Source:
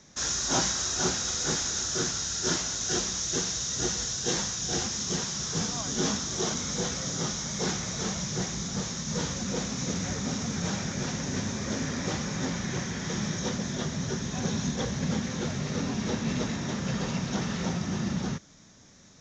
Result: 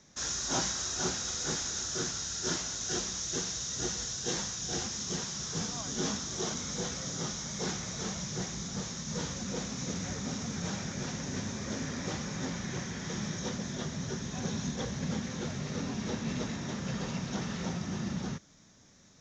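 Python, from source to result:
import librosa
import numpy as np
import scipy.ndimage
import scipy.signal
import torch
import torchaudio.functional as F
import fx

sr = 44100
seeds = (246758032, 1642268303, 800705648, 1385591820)

y = x * librosa.db_to_amplitude(-5.0)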